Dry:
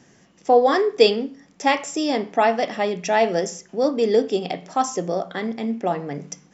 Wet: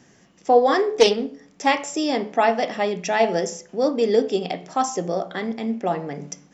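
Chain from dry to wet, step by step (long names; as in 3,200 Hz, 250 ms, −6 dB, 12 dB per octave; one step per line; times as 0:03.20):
hum removal 71.54 Hz, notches 14
0:00.88–0:01.67: highs frequency-modulated by the lows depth 0.15 ms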